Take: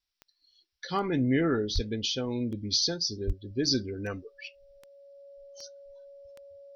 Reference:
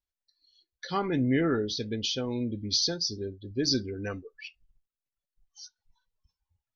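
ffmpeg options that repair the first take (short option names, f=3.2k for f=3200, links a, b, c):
-filter_complex "[0:a]adeclick=t=4,bandreject=f=560:w=30,asplit=3[a][b][c];[a]afade=t=out:st=1.74:d=0.02[d];[b]highpass=f=140:w=0.5412,highpass=f=140:w=1.3066,afade=t=in:st=1.74:d=0.02,afade=t=out:st=1.86:d=0.02[e];[c]afade=t=in:st=1.86:d=0.02[f];[d][e][f]amix=inputs=3:normalize=0,asplit=3[g][h][i];[g]afade=t=out:st=3.26:d=0.02[j];[h]highpass=f=140:w=0.5412,highpass=f=140:w=1.3066,afade=t=in:st=3.26:d=0.02,afade=t=out:st=3.38:d=0.02[k];[i]afade=t=in:st=3.38:d=0.02[l];[j][k][l]amix=inputs=3:normalize=0,agate=range=-21dB:threshold=-57dB"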